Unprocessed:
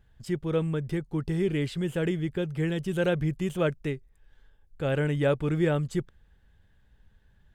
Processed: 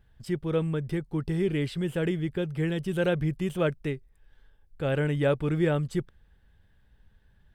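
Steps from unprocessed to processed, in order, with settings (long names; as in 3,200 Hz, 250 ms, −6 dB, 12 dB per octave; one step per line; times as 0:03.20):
parametric band 6,800 Hz −7 dB 0.21 octaves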